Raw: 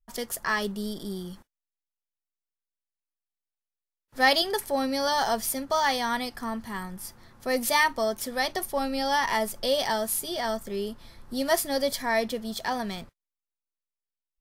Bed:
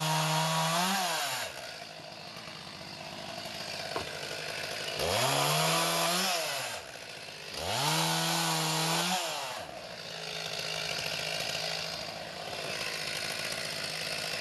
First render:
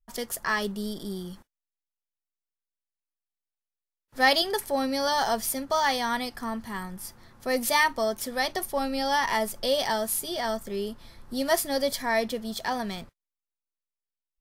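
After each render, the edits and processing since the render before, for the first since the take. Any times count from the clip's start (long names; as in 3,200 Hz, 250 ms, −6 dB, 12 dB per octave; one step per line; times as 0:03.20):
no processing that can be heard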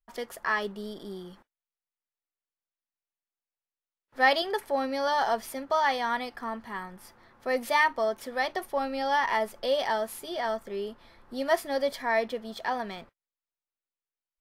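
bass and treble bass −11 dB, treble −14 dB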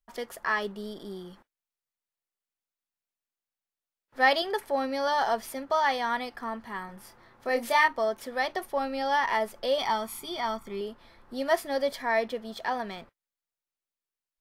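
0:06.86–0:07.88: double-tracking delay 26 ms −6 dB
0:09.78–0:10.81: comb filter 0.9 ms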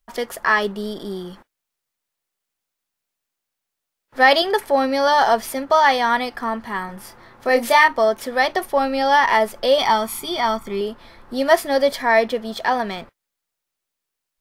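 level +10.5 dB
brickwall limiter −3 dBFS, peak gain reduction 3 dB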